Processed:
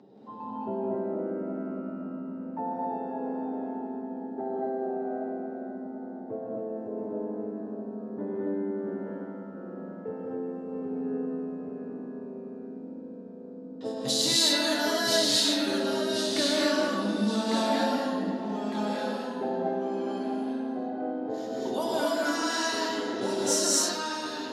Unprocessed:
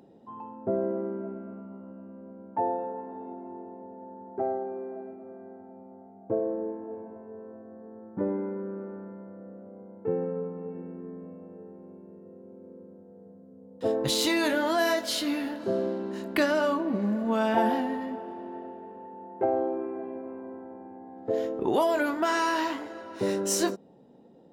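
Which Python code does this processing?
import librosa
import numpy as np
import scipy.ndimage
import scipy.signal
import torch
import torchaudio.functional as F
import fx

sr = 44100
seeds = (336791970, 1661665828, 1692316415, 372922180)

p1 = scipy.signal.sosfilt(scipy.signal.butter(4, 120.0, 'highpass', fs=sr, output='sos'), x)
p2 = fx.env_lowpass(p1, sr, base_hz=2800.0, full_db=-25.5)
p3 = scipy.signal.sosfilt(scipy.signal.butter(2, 11000.0, 'lowpass', fs=sr, output='sos'), p2)
p4 = fx.high_shelf_res(p3, sr, hz=3400.0, db=8.0, q=1.5)
p5 = fx.over_compress(p4, sr, threshold_db=-39.0, ratio=-1.0)
p6 = p4 + F.gain(torch.from_numpy(p5), -3.0).numpy()
p7 = fx.notch_comb(p6, sr, f0_hz=170.0)
p8 = fx.echo_stepped(p7, sr, ms=102, hz=3700.0, octaves=-0.7, feedback_pct=70, wet_db=-6)
p9 = fx.echo_pitch(p8, sr, ms=177, semitones=-1, count=2, db_per_echo=-6.0)
p10 = fx.rev_gated(p9, sr, seeds[0], gate_ms=290, shape='rising', drr_db=-5.0)
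y = F.gain(torch.from_numpy(p10), -7.0).numpy()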